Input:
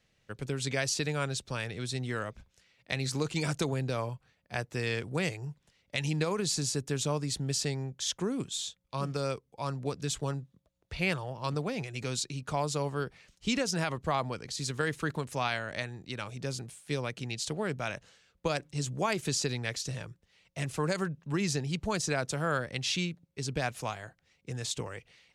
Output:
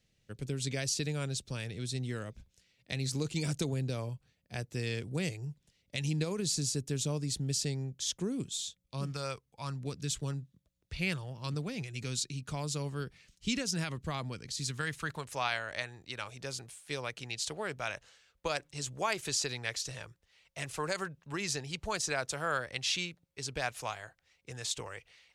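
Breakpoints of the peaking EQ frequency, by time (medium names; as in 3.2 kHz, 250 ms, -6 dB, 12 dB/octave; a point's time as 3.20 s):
peaking EQ -11 dB 2.2 oct
9.00 s 1.1 kHz
9.24 s 260 Hz
9.91 s 770 Hz
14.56 s 770 Hz
15.34 s 190 Hz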